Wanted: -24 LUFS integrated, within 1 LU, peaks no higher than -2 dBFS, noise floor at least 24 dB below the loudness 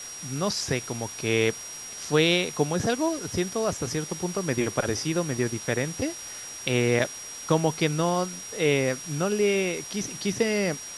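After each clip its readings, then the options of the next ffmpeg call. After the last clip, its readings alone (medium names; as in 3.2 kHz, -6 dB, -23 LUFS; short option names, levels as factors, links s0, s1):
steady tone 5.7 kHz; tone level -38 dBFS; noise floor -39 dBFS; noise floor target -51 dBFS; loudness -26.5 LUFS; peak level -7.5 dBFS; loudness target -24.0 LUFS
-> -af "bandreject=f=5700:w=30"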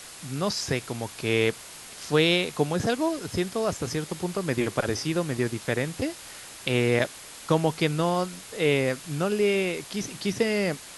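steady tone not found; noise floor -44 dBFS; noise floor target -51 dBFS
-> -af "afftdn=nr=7:nf=-44"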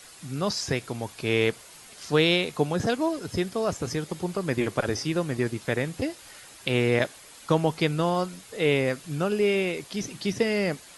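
noise floor -49 dBFS; noise floor target -51 dBFS
-> -af "afftdn=nr=6:nf=-49"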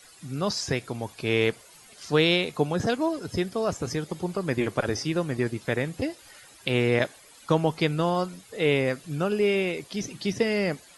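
noise floor -52 dBFS; loudness -27.0 LUFS; peak level -8.0 dBFS; loudness target -24.0 LUFS
-> -af "volume=1.41"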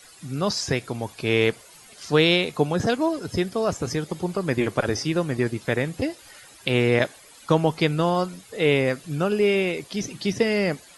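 loudness -24.0 LUFS; peak level -5.0 dBFS; noise floor -49 dBFS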